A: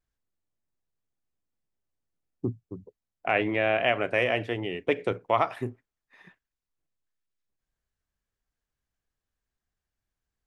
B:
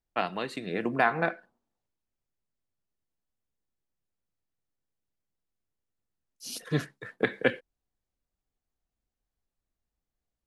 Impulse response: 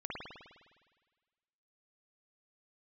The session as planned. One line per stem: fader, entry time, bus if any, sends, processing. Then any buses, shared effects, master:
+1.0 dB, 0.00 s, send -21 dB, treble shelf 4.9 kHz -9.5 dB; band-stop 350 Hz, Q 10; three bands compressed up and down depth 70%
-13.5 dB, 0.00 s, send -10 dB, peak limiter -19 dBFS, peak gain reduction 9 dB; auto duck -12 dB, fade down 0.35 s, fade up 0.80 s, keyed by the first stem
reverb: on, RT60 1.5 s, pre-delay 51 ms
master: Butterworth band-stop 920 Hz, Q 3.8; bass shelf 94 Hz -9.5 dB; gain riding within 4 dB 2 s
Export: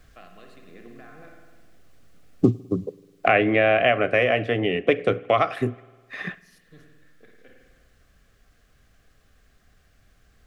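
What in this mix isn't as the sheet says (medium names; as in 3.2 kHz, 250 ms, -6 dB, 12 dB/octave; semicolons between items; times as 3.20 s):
stem A +1.0 dB -> +7.0 dB; master: missing bass shelf 94 Hz -9.5 dB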